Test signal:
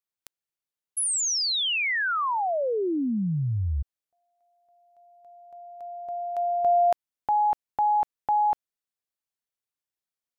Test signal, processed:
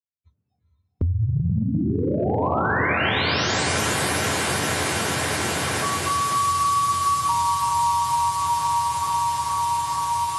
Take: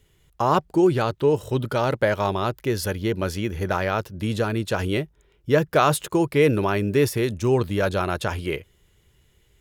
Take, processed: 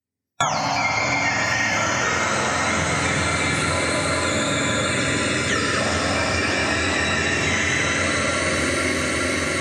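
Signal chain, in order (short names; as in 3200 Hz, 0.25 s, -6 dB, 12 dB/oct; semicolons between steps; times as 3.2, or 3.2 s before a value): spectrum mirrored in octaves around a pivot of 890 Hz; low shelf 210 Hz -4.5 dB; non-linear reverb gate 0.46 s flat, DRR -7.5 dB; spectral noise reduction 24 dB; gate -42 dBFS, range -37 dB; high shelf 12000 Hz -10 dB; compressor, threshold -26 dBFS; diffused feedback echo 0.463 s, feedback 75%, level -3.5 dB; three-band squash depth 100%; gain +4 dB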